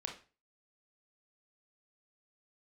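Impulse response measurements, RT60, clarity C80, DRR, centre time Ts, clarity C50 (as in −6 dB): 0.35 s, 14.5 dB, 1.5 dB, 21 ms, 7.5 dB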